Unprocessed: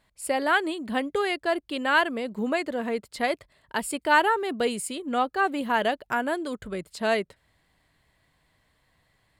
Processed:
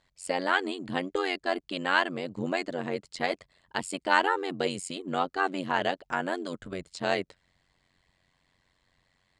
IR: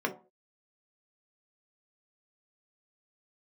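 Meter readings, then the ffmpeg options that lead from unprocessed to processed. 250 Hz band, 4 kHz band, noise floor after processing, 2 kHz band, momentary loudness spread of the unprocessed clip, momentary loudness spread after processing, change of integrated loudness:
−4.5 dB, −1.5 dB, −74 dBFS, −3.5 dB, 9 LU, 10 LU, −3.5 dB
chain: -af "highshelf=frequency=5500:gain=10.5,tremolo=f=91:d=0.947,lowpass=frequency=7000:width=0.5412,lowpass=frequency=7000:width=1.3066"

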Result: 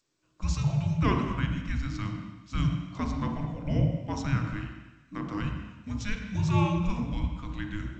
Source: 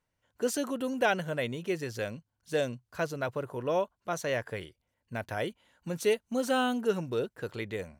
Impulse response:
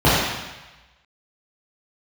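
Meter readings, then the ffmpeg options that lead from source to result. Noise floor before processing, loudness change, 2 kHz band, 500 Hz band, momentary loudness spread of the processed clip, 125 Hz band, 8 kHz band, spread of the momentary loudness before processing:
−82 dBFS, +2.0 dB, −4.0 dB, −10.0 dB, 11 LU, +13.5 dB, −5.5 dB, 11 LU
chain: -filter_complex "[0:a]afreqshift=-420,asplit=2[link_01][link_02];[1:a]atrim=start_sample=2205,lowshelf=frequency=67:gain=-5.5,adelay=26[link_03];[link_02][link_03]afir=irnorm=-1:irlink=0,volume=-28dB[link_04];[link_01][link_04]amix=inputs=2:normalize=0,volume=-1.5dB" -ar 16000 -c:a g722

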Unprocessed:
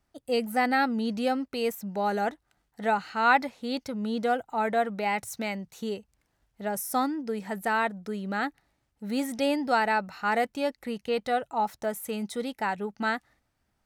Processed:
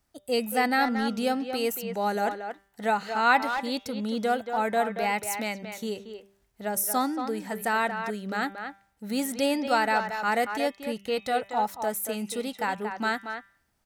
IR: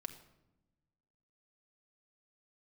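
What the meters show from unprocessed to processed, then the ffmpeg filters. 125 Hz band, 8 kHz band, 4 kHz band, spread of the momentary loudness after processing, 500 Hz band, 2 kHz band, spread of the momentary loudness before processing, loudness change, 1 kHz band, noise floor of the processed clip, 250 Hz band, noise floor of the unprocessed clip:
can't be measured, +6.5 dB, +3.0 dB, 10 LU, +0.5 dB, +1.5 dB, 9 LU, +1.0 dB, +1.0 dB, −70 dBFS, 0.0 dB, −76 dBFS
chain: -filter_complex "[0:a]highshelf=frequency=5300:gain=8.5,bandreject=frequency=197.1:width_type=h:width=4,bandreject=frequency=394.2:width_type=h:width=4,bandreject=frequency=591.3:width_type=h:width=4,bandreject=frequency=788.4:width_type=h:width=4,bandreject=frequency=985.5:width_type=h:width=4,bandreject=frequency=1182.6:width_type=h:width=4,bandreject=frequency=1379.7:width_type=h:width=4,bandreject=frequency=1576.8:width_type=h:width=4,bandreject=frequency=1773.9:width_type=h:width=4,bandreject=frequency=1971:width_type=h:width=4,bandreject=frequency=2168.1:width_type=h:width=4,bandreject=frequency=2365.2:width_type=h:width=4,bandreject=frequency=2562.3:width_type=h:width=4,bandreject=frequency=2759.4:width_type=h:width=4,bandreject=frequency=2956.5:width_type=h:width=4,bandreject=frequency=3153.6:width_type=h:width=4,bandreject=frequency=3350.7:width_type=h:width=4,bandreject=frequency=3547.8:width_type=h:width=4,bandreject=frequency=3744.9:width_type=h:width=4,asplit=2[link_01][link_02];[link_02]adelay=230,highpass=300,lowpass=3400,asoftclip=type=hard:threshold=-17.5dB,volume=-7dB[link_03];[link_01][link_03]amix=inputs=2:normalize=0"

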